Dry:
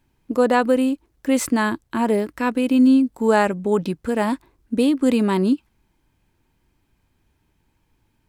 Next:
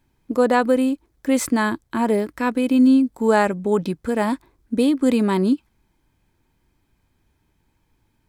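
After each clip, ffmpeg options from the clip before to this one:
-af "bandreject=f=2800:w=13"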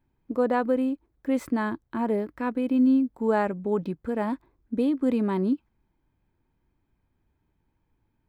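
-af "equalizer=f=8500:t=o:w=2.5:g=-15,volume=0.501"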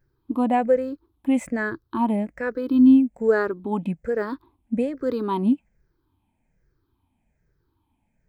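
-af "afftfilt=real='re*pow(10,16/40*sin(2*PI*(0.56*log(max(b,1)*sr/1024/100)/log(2)-(-1.2)*(pts-256)/sr)))':imag='im*pow(10,16/40*sin(2*PI*(0.56*log(max(b,1)*sr/1024/100)/log(2)-(-1.2)*(pts-256)/sr)))':win_size=1024:overlap=0.75"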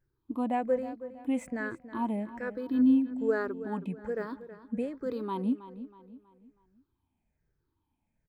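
-filter_complex "[0:a]asplit=2[s0][s1];[s1]adelay=321,lowpass=f=4500:p=1,volume=0.211,asplit=2[s2][s3];[s3]adelay=321,lowpass=f=4500:p=1,volume=0.41,asplit=2[s4][s5];[s5]adelay=321,lowpass=f=4500:p=1,volume=0.41,asplit=2[s6][s7];[s7]adelay=321,lowpass=f=4500:p=1,volume=0.41[s8];[s0][s2][s4][s6][s8]amix=inputs=5:normalize=0,volume=0.355"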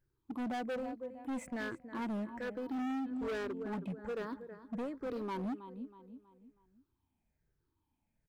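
-af "volume=42.2,asoftclip=hard,volume=0.0237,volume=0.75"

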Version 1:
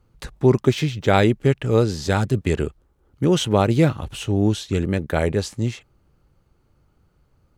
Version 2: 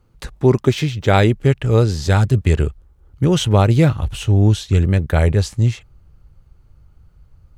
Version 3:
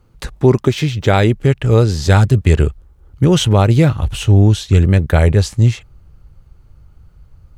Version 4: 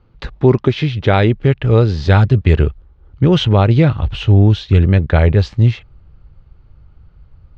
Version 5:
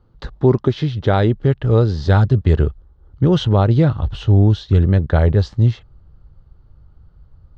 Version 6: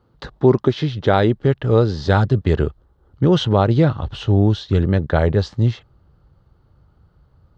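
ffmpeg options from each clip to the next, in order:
-af "asubboost=boost=5:cutoff=120,volume=1.33"
-af "alimiter=limit=0.501:level=0:latency=1:release=298,volume=1.68"
-af "lowpass=f=4200:w=0.5412,lowpass=f=4200:w=1.3066"
-af "equalizer=f=2400:w=2.5:g=-12.5,volume=0.75"
-af "highpass=f=180:p=1,volume=1.26"

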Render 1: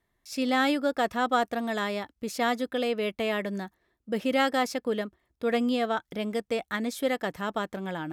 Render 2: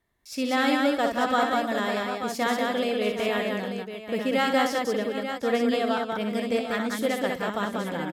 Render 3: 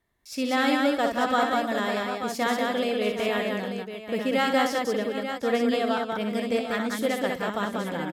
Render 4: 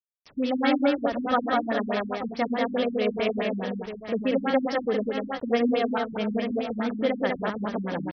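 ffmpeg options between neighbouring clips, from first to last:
-af "aecho=1:1:62|190|305|746|889:0.473|0.708|0.178|0.2|0.376"
-af anull
-af "acrusher=bits=6:mix=0:aa=0.000001,afftfilt=real='re*lt(b*sr/1024,250*pow(6300/250,0.5+0.5*sin(2*PI*4.7*pts/sr)))':imag='im*lt(b*sr/1024,250*pow(6300/250,0.5+0.5*sin(2*PI*4.7*pts/sr)))':win_size=1024:overlap=0.75,volume=1.19"

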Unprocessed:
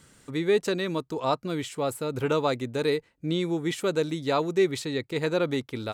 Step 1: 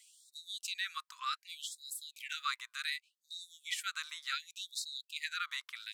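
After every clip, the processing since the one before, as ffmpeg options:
-af "afftfilt=real='re*gte(b*sr/1024,950*pow(3700/950,0.5+0.5*sin(2*PI*0.67*pts/sr)))':imag='im*gte(b*sr/1024,950*pow(3700/950,0.5+0.5*sin(2*PI*0.67*pts/sr)))':win_size=1024:overlap=0.75,volume=0.794"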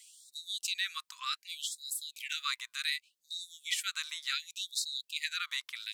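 -af "equalizer=f=1300:t=o:w=0.98:g=-9,volume=2"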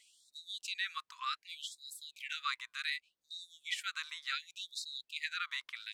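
-af "lowpass=f=1200:p=1,volume=1.68"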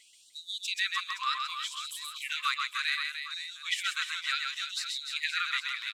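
-af "aecho=1:1:130|299|518.7|804.3|1176:0.631|0.398|0.251|0.158|0.1,volume=2"

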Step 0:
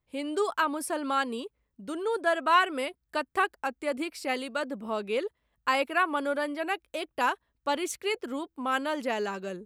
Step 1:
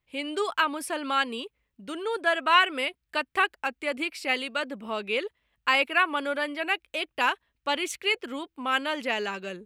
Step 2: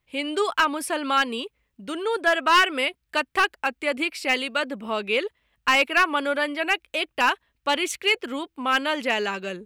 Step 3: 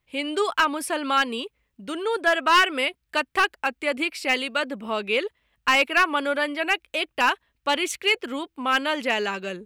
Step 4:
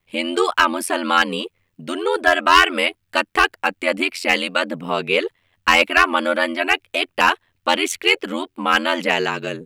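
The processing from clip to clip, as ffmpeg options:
-af "equalizer=f=2600:t=o:w=1.4:g=10.5,volume=0.841"
-af "volume=6.68,asoftclip=hard,volume=0.15,volume=1.68"
-af anull
-af "aeval=exprs='val(0)*sin(2*PI*43*n/s)':c=same,volume=2.51"

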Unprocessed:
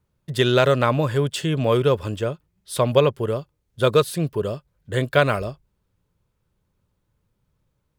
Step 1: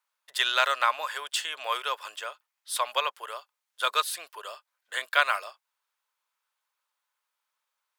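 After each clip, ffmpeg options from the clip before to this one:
-af "highpass=f=900:w=0.5412,highpass=f=900:w=1.3066"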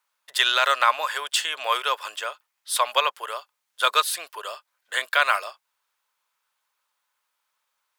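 -af "alimiter=level_in=3.35:limit=0.891:release=50:level=0:latency=1,volume=0.596"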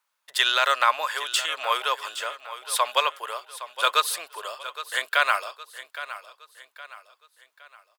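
-af "aecho=1:1:815|1630|2445|3260:0.2|0.0818|0.0335|0.0138,volume=0.891"

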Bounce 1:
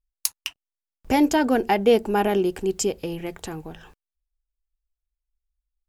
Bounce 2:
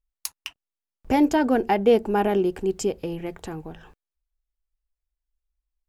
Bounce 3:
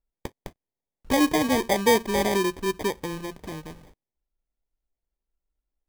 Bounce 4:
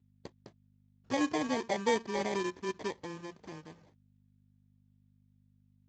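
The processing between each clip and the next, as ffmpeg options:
-af "highshelf=f=2600:g=-8"
-af "acrusher=samples=32:mix=1:aa=0.000001,volume=0.794"
-af "lowshelf=f=140:g=-6.5,aeval=exprs='val(0)+0.00251*(sin(2*PI*50*n/s)+sin(2*PI*2*50*n/s)/2+sin(2*PI*3*50*n/s)/3+sin(2*PI*4*50*n/s)/4+sin(2*PI*5*50*n/s)/5)':c=same,volume=0.355" -ar 16000 -c:a libspeex -b:a 13k

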